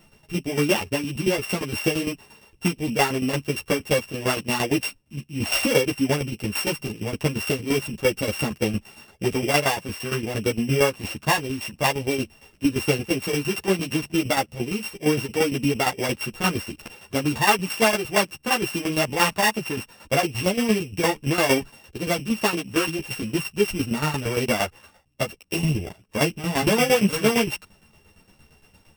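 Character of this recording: a buzz of ramps at a fixed pitch in blocks of 16 samples; tremolo saw down 8.7 Hz, depth 75%; a shimmering, thickened sound

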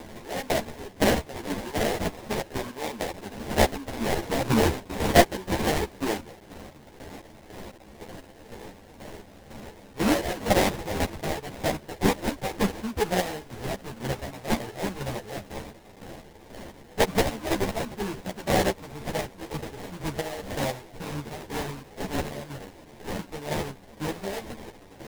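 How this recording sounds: a quantiser's noise floor 8-bit, dither triangular; chopped level 2 Hz, depth 60%, duty 40%; aliases and images of a low sample rate 1300 Hz, jitter 20%; a shimmering, thickened sound

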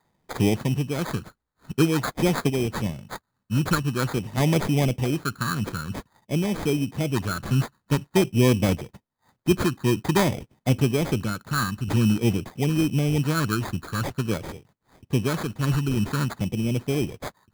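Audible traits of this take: random-step tremolo 1.6 Hz; phasing stages 12, 0.49 Hz, lowest notch 610–1700 Hz; aliases and images of a low sample rate 2800 Hz, jitter 0%

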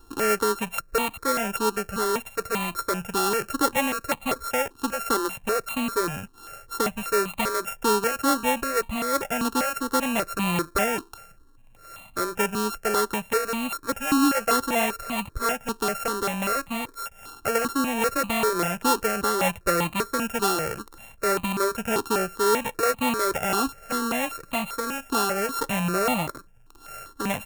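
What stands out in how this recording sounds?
a buzz of ramps at a fixed pitch in blocks of 32 samples; notches that jump at a steady rate 5.1 Hz 580–1500 Hz

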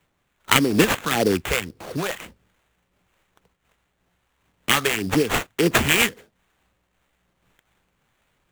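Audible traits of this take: phasing stages 2, 1.8 Hz, lowest notch 260–2100 Hz; aliases and images of a low sample rate 5100 Hz, jitter 20%; noise-modulated level

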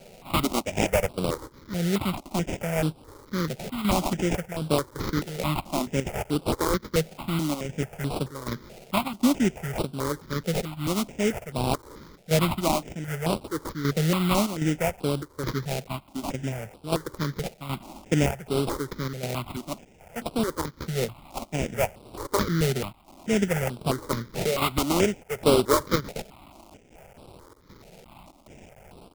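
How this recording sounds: a quantiser's noise floor 8-bit, dither triangular; chopped level 1.3 Hz, depth 60%, duty 80%; aliases and images of a low sample rate 1700 Hz, jitter 20%; notches that jump at a steady rate 4.6 Hz 290–6500 Hz

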